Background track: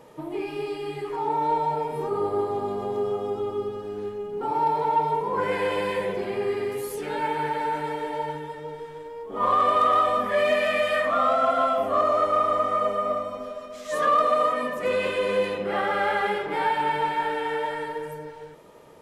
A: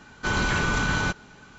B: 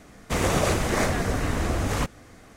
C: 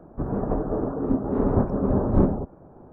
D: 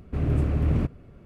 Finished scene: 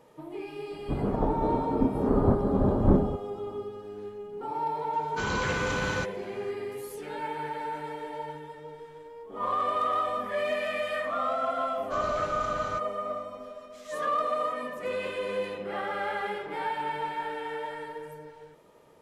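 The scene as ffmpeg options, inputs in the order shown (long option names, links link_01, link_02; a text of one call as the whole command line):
ffmpeg -i bed.wav -i cue0.wav -i cue1.wav -i cue2.wav -filter_complex "[1:a]asplit=2[link_01][link_02];[0:a]volume=-7.5dB[link_03];[link_01]highpass=53[link_04];[3:a]atrim=end=2.92,asetpts=PTS-STARTPTS,volume=-2dB,afade=type=in:duration=0.004:curve=hsin,afade=type=out:start_time=2.916:duration=0.004:curve=hsin,adelay=710[link_05];[link_04]atrim=end=1.58,asetpts=PTS-STARTPTS,volume=-6dB,afade=type=in:duration=0.004:curve=hsin,afade=type=out:start_time=1.576:duration=0.004:curve=hsin,adelay=217413S[link_06];[link_02]atrim=end=1.58,asetpts=PTS-STARTPTS,volume=-15.5dB,afade=type=in:duration=0.004:curve=hsin,afade=type=out:start_time=1.576:duration=0.004:curve=hsin,adelay=11670[link_07];[link_03][link_05][link_06][link_07]amix=inputs=4:normalize=0" out.wav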